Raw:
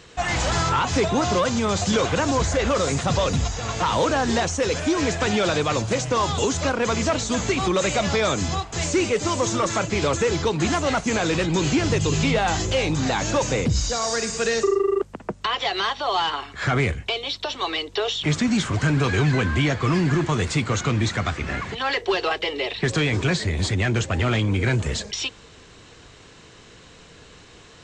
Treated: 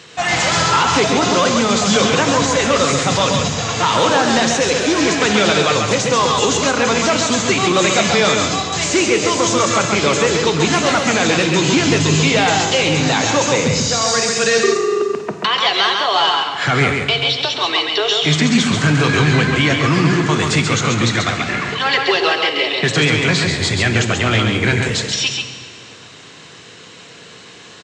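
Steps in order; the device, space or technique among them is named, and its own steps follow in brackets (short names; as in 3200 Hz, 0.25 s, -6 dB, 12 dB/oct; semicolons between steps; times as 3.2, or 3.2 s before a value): PA in a hall (HPF 110 Hz 24 dB/oct; bell 3400 Hz +5 dB 2.6 oct; echo 0.136 s -4.5 dB; reverb RT60 1.9 s, pre-delay 13 ms, DRR 8 dB); gain +4 dB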